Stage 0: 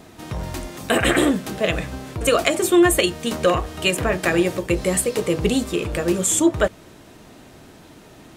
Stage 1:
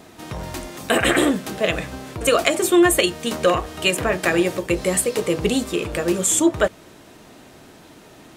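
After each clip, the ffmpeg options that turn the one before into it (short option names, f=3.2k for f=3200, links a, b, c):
-af "lowshelf=f=160:g=-6.5,volume=1dB"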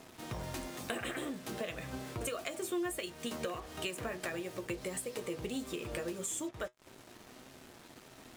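-af "acompressor=threshold=-26dB:ratio=16,acrusher=bits=6:mix=0:aa=0.5,flanger=delay=7.5:depth=1.1:regen=66:speed=1.6:shape=triangular,volume=-4.5dB"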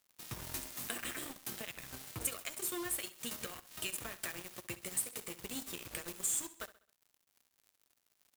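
-af "firequalizer=gain_entry='entry(130,0);entry(500,-7);entry(1200,0);entry(14000,15)':delay=0.05:min_phase=1,acrusher=bits=5:mix=0:aa=0.5,aecho=1:1:66|132|198|264:0.158|0.0666|0.028|0.0117,volume=-3.5dB"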